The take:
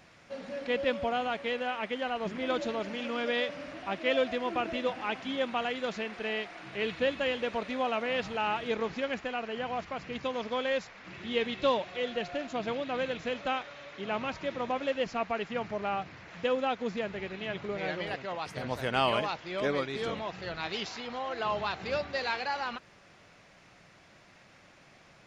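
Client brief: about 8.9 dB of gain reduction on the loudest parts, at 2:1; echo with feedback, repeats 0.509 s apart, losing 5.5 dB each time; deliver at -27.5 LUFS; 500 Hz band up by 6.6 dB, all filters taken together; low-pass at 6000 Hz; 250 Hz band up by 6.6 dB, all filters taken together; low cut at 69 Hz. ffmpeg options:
-af "highpass=69,lowpass=6k,equalizer=f=250:t=o:g=6,equalizer=f=500:t=o:g=6,acompressor=threshold=-34dB:ratio=2,aecho=1:1:509|1018|1527|2036|2545|3054|3563:0.531|0.281|0.149|0.079|0.0419|0.0222|0.0118,volume=5.5dB"

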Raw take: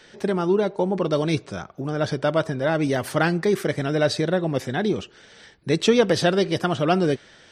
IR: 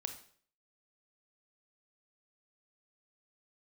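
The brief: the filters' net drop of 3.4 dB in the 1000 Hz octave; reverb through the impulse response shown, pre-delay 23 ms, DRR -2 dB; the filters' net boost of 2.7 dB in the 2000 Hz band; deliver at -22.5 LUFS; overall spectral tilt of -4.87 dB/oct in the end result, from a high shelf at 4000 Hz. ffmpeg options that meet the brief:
-filter_complex "[0:a]equalizer=f=1k:t=o:g=-7.5,equalizer=f=2k:t=o:g=5.5,highshelf=f=4k:g=5,asplit=2[a][b];[1:a]atrim=start_sample=2205,adelay=23[c];[b][c]afir=irnorm=-1:irlink=0,volume=3.5dB[d];[a][d]amix=inputs=2:normalize=0,volume=-3.5dB"

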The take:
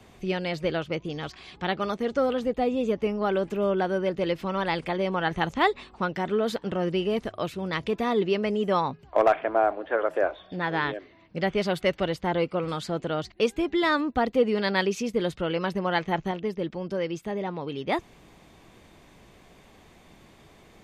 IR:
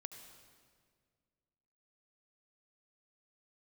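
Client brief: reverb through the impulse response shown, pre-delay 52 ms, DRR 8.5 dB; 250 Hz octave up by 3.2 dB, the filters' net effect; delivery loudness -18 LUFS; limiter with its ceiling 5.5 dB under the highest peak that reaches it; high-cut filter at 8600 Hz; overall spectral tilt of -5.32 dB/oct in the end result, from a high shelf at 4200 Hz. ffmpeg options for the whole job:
-filter_complex "[0:a]lowpass=8.6k,equalizer=f=250:t=o:g=4.5,highshelf=f=4.2k:g=-6,alimiter=limit=-15.5dB:level=0:latency=1,asplit=2[a][b];[1:a]atrim=start_sample=2205,adelay=52[c];[b][c]afir=irnorm=-1:irlink=0,volume=-4dB[d];[a][d]amix=inputs=2:normalize=0,volume=8.5dB"

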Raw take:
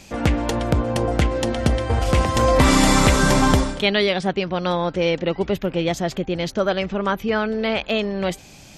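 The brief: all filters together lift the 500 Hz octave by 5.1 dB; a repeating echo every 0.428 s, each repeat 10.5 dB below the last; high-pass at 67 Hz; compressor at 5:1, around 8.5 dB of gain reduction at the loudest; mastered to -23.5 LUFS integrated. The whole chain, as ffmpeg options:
-af "highpass=67,equalizer=f=500:t=o:g=6,acompressor=threshold=-19dB:ratio=5,aecho=1:1:428|856|1284:0.299|0.0896|0.0269,volume=-0.5dB"

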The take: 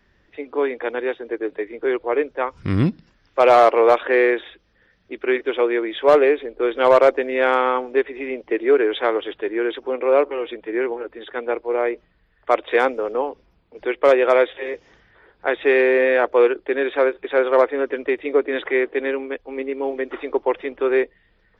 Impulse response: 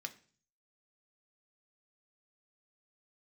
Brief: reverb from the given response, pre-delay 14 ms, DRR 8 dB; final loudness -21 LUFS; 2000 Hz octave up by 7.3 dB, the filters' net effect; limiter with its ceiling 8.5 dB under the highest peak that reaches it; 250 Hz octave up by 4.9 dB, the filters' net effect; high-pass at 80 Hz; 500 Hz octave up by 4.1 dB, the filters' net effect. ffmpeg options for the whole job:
-filter_complex "[0:a]highpass=80,equalizer=f=250:t=o:g=5.5,equalizer=f=500:t=o:g=3,equalizer=f=2k:t=o:g=8.5,alimiter=limit=-7.5dB:level=0:latency=1,asplit=2[a][b];[1:a]atrim=start_sample=2205,adelay=14[c];[b][c]afir=irnorm=-1:irlink=0,volume=-6dB[d];[a][d]amix=inputs=2:normalize=0,volume=-2.5dB"

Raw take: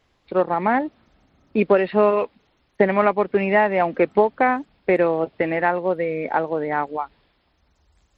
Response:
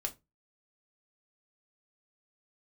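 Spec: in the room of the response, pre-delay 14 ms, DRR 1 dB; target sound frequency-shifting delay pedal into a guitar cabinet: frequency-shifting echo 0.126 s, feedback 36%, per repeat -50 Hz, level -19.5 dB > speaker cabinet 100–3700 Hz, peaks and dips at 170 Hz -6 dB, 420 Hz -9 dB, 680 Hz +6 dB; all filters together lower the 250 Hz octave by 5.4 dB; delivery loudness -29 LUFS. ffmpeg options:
-filter_complex "[0:a]equalizer=f=250:t=o:g=-4,asplit=2[a][b];[1:a]atrim=start_sample=2205,adelay=14[c];[b][c]afir=irnorm=-1:irlink=0,volume=-1.5dB[d];[a][d]amix=inputs=2:normalize=0,asplit=4[e][f][g][h];[f]adelay=126,afreqshift=-50,volume=-19.5dB[i];[g]adelay=252,afreqshift=-100,volume=-28.4dB[j];[h]adelay=378,afreqshift=-150,volume=-37.2dB[k];[e][i][j][k]amix=inputs=4:normalize=0,highpass=100,equalizer=f=170:t=q:w=4:g=-6,equalizer=f=420:t=q:w=4:g=-9,equalizer=f=680:t=q:w=4:g=6,lowpass=f=3.7k:w=0.5412,lowpass=f=3.7k:w=1.3066,volume=-11.5dB"

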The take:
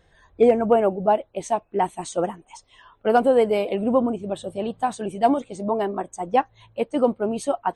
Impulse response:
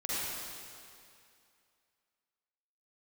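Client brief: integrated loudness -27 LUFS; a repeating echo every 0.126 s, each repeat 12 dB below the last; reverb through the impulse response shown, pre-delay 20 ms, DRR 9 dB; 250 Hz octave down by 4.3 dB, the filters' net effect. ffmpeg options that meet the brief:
-filter_complex "[0:a]equalizer=f=250:t=o:g=-5,aecho=1:1:126|252|378:0.251|0.0628|0.0157,asplit=2[a][b];[1:a]atrim=start_sample=2205,adelay=20[c];[b][c]afir=irnorm=-1:irlink=0,volume=-15.5dB[d];[a][d]amix=inputs=2:normalize=0,volume=-3.5dB"

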